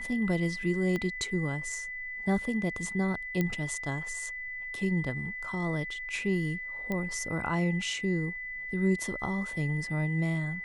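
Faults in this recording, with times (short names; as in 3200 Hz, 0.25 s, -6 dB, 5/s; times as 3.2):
tone 2000 Hz -36 dBFS
0.96 pop -20 dBFS
3.41 pop -16 dBFS
6.92 pop -20 dBFS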